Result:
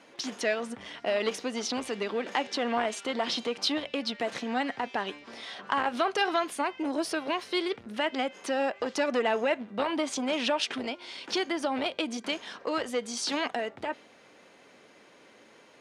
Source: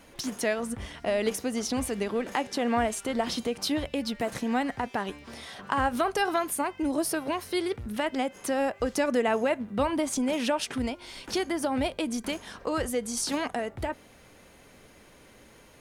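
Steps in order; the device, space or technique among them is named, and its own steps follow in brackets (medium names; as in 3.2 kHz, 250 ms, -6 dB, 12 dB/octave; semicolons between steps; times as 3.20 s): dynamic bell 3.3 kHz, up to +6 dB, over -47 dBFS, Q 0.94; public-address speaker with an overloaded transformer (transformer saturation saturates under 1.3 kHz; band-pass 260–5800 Hz)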